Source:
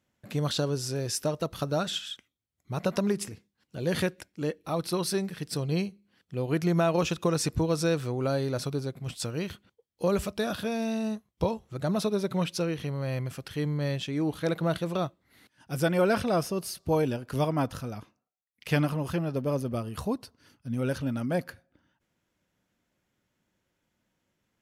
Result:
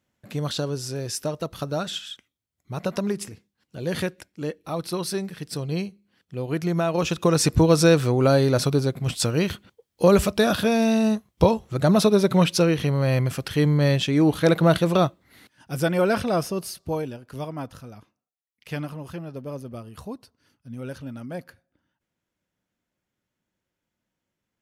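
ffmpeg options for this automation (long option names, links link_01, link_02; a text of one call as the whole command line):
ffmpeg -i in.wav -af "volume=10dB,afade=type=in:start_time=6.92:duration=0.74:silence=0.354813,afade=type=out:start_time=15.03:duration=0.7:silence=0.446684,afade=type=out:start_time=16.59:duration=0.52:silence=0.375837" out.wav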